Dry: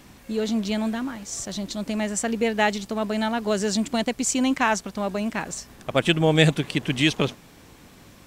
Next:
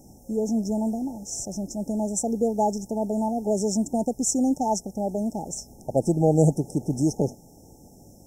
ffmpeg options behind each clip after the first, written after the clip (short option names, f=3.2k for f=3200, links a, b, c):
-af "afftfilt=real='re*(1-between(b*sr/4096,900,5200))':imag='im*(1-between(b*sr/4096,900,5200))':win_size=4096:overlap=0.75"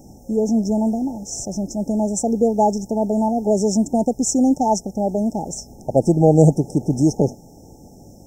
-af "equalizer=f=11k:t=o:w=0.81:g=-10,volume=6.5dB"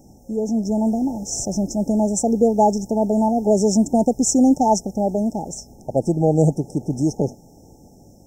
-af "dynaudnorm=f=200:g=9:m=11.5dB,volume=-4.5dB"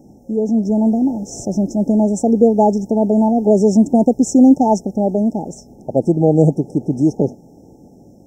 -af "equalizer=f=300:w=0.35:g=12.5,volume=-6.5dB"